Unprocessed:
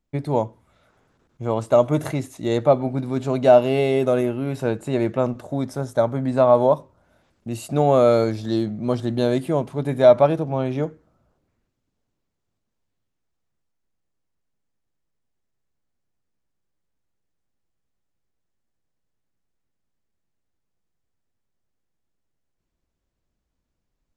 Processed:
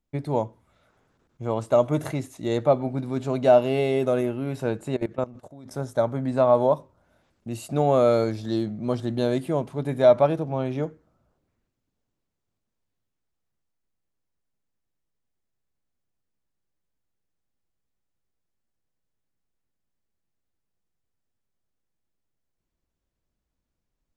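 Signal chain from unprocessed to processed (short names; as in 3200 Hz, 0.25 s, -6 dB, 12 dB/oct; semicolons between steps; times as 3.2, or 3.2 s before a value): 4.95–5.71 level quantiser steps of 20 dB; gain -3.5 dB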